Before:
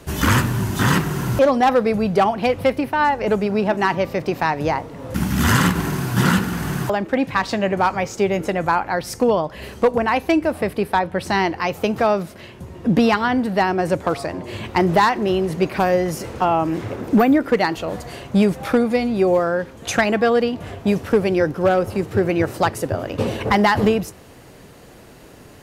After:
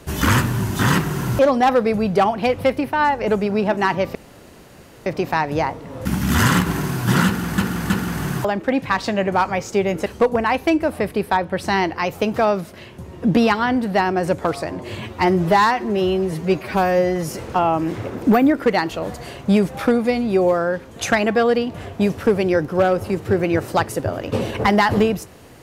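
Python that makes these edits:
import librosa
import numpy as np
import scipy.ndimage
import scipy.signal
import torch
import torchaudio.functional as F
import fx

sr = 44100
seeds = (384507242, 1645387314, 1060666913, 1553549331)

y = fx.edit(x, sr, fx.insert_room_tone(at_s=4.15, length_s=0.91),
    fx.repeat(start_s=6.35, length_s=0.32, count=3),
    fx.cut(start_s=8.51, length_s=1.17),
    fx.stretch_span(start_s=14.62, length_s=1.52, factor=1.5), tone=tone)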